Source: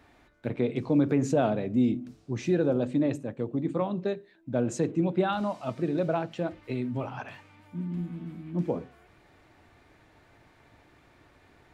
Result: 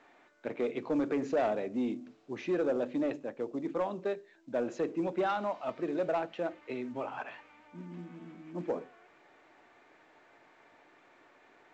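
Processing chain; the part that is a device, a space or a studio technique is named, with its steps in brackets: telephone (band-pass 370–3000 Hz; saturation -22.5 dBFS, distortion -17 dB; µ-law 128 kbps 16 kHz)

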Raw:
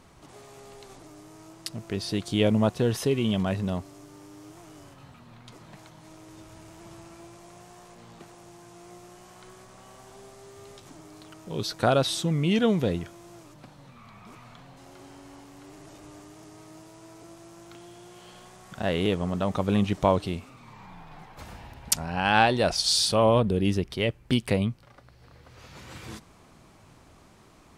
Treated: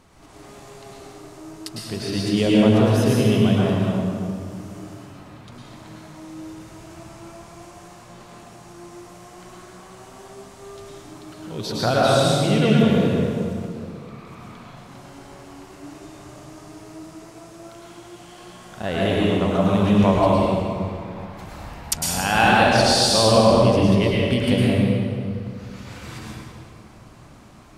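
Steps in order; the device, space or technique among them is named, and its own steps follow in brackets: stairwell (reverberation RT60 2.4 s, pre-delay 99 ms, DRR -6 dB)

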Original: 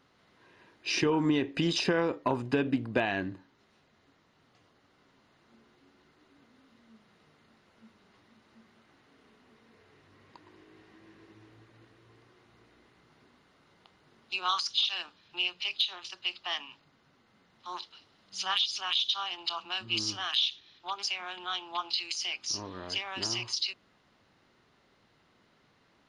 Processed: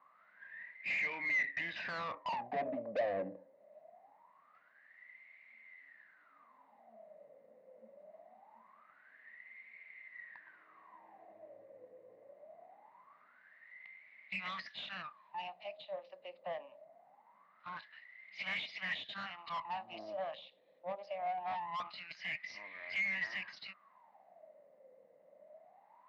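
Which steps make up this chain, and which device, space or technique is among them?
wah-wah guitar rig (wah-wah 0.23 Hz 510–2200 Hz, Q 16; valve stage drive 54 dB, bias 0.3; cabinet simulation 110–4200 Hz, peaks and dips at 190 Hz +9 dB, 380 Hz -9 dB, 620 Hz +10 dB, 1.4 kHz -8 dB, 2 kHz +8 dB, 3.2 kHz -6 dB); trim +18 dB

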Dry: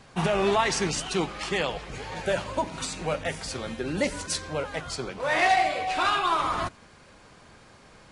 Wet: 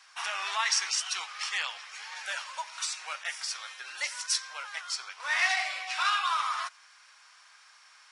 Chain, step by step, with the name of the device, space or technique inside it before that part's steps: headphones lying on a table (high-pass 1.1 kHz 24 dB/octave; peaking EQ 5.5 kHz +9 dB 0.21 oct); trim -1 dB

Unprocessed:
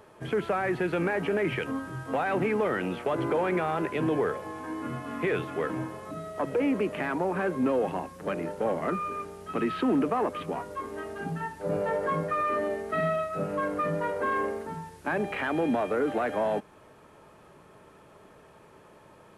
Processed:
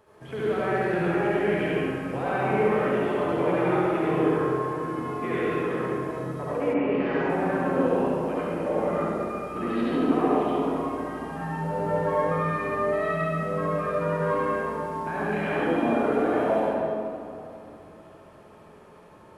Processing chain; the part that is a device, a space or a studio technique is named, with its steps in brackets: tunnel (flutter echo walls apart 11.7 m, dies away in 0.71 s; reverberation RT60 2.7 s, pre-delay 63 ms, DRR -8 dB); 6.73–7.28 s: low-pass 2.7 kHz -> 6.8 kHz 24 dB/octave; trim -7.5 dB

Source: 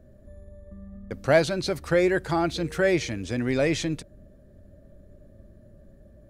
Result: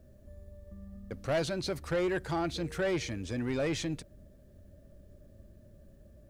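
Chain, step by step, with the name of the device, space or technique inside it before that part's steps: open-reel tape (saturation -19.5 dBFS, distortion -11 dB; peaking EQ 71 Hz +3 dB 1.13 oct; white noise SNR 44 dB); trim -5.5 dB

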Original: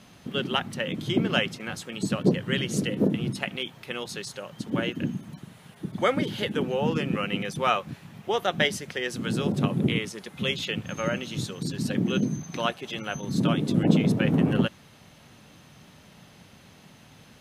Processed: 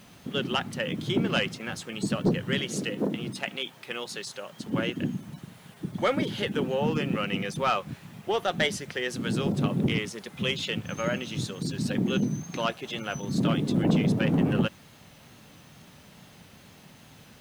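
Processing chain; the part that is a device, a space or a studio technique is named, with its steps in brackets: compact cassette (saturation -15 dBFS, distortion -17 dB; low-pass 11 kHz; wow and flutter; white noise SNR 34 dB); 2.59–4.64 s: high-pass 290 Hz 6 dB/octave

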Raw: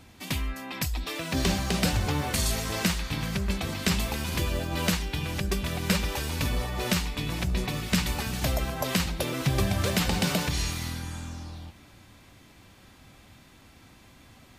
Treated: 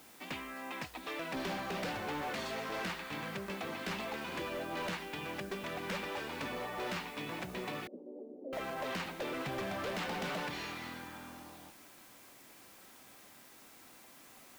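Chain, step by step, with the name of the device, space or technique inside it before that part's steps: aircraft radio (band-pass 320–2400 Hz; hard clipper -32 dBFS, distortion -9 dB; white noise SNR 18 dB); 7.87–8.53 s: elliptic band-pass 250–550 Hz, stop band 60 dB; trim -2.5 dB

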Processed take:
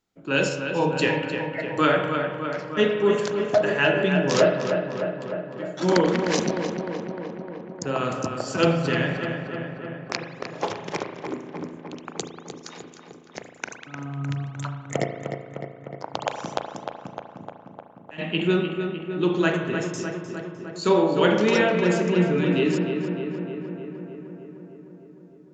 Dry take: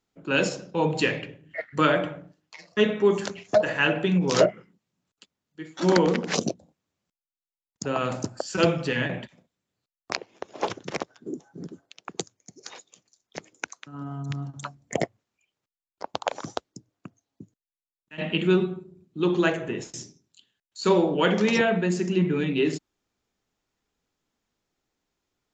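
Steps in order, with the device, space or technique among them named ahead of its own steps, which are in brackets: dub delay into a spring reverb (filtered feedback delay 304 ms, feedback 72%, low-pass 3 kHz, level -6.5 dB; spring tank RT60 1.1 s, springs 36 ms, chirp 55 ms, DRR 6 dB)

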